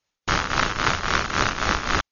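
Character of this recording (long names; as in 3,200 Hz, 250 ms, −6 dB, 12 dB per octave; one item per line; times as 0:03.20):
tremolo triangle 3.7 Hz, depth 75%
AC-3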